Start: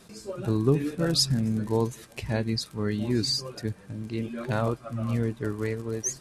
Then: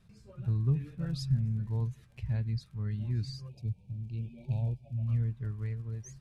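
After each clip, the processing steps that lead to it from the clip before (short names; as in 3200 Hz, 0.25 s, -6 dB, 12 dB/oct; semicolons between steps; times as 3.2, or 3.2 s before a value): spectral delete 3.49–5.08, 950–2200 Hz; EQ curve 130 Hz 0 dB, 310 Hz -22 dB, 2500 Hz -15 dB, 7600 Hz -24 dB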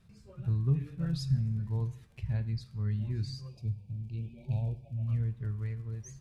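two-slope reverb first 0.57 s, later 2.1 s, from -25 dB, DRR 11.5 dB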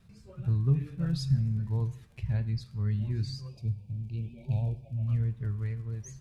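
vibrato 6.3 Hz 32 cents; gain +2.5 dB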